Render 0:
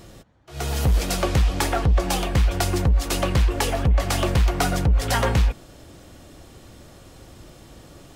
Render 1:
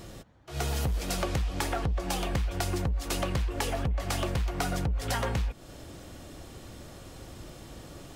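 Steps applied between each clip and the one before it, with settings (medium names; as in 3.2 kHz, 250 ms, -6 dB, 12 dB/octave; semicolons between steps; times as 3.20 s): compression, threshold -27 dBFS, peak gain reduction 12 dB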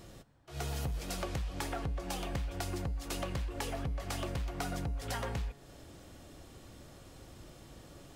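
feedback comb 140 Hz, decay 1.7 s, mix 50%; trim -1.5 dB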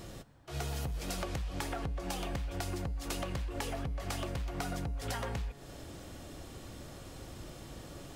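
compression, threshold -39 dBFS, peak gain reduction 7.5 dB; trim +5.5 dB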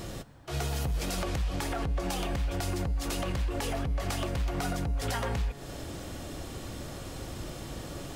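peak limiter -30.5 dBFS, peak gain reduction 6.5 dB; trim +7.5 dB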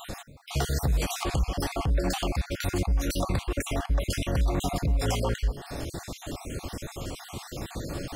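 random holes in the spectrogram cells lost 44%; trim +6 dB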